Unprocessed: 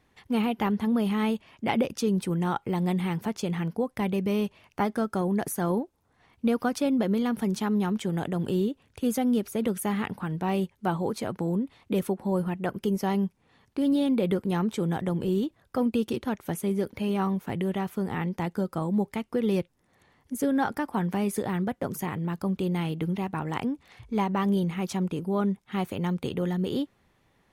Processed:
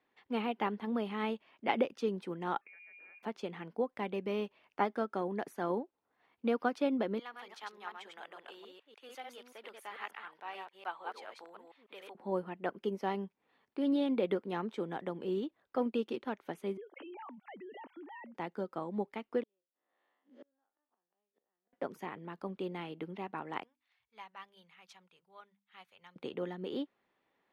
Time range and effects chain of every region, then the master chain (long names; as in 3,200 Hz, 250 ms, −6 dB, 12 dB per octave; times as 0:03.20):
0:02.61–0:03.23: voice inversion scrambler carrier 2,600 Hz + downward compressor 20 to 1, threshold −40 dBFS + high-frequency loss of the air 210 metres
0:07.19–0:12.15: delay that plays each chunk backwards 146 ms, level −2.5 dB + high-pass filter 980 Hz
0:16.77–0:18.35: three sine waves on the formant tracks + downward compressor 5 to 1, threshold −36 dBFS
0:19.43–0:21.73: spectrum smeared in time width 84 ms + loudspeaker in its box 410–3,500 Hz, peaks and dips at 430 Hz −5 dB, 920 Hz −5 dB, 1,500 Hz −5 dB, 2,300 Hz −9 dB + gate with flip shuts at −33 dBFS, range −41 dB
0:23.63–0:26.16: guitar amp tone stack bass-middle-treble 10-0-10 + mains-hum notches 50/100/150/200/250/300 Hz + expander for the loud parts, over −53 dBFS
whole clip: three-way crossover with the lows and the highs turned down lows −22 dB, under 240 Hz, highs −18 dB, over 4,300 Hz; expander for the loud parts 1.5 to 1, over −37 dBFS; level −2 dB